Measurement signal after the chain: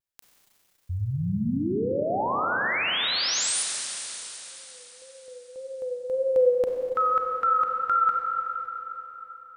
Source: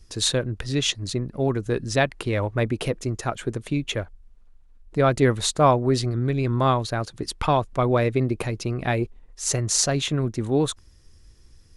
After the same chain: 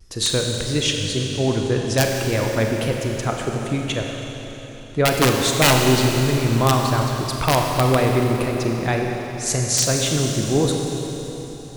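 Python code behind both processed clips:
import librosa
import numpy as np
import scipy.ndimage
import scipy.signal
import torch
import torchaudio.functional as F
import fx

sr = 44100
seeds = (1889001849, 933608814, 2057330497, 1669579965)

y = (np.mod(10.0 ** (10.0 / 20.0) * x + 1.0, 2.0) - 1.0) / 10.0 ** (10.0 / 20.0)
y = fx.vibrato(y, sr, rate_hz=1.8, depth_cents=72.0)
y = fx.rev_schroeder(y, sr, rt60_s=3.9, comb_ms=31, drr_db=1.0)
y = y * 10.0 ** (1.5 / 20.0)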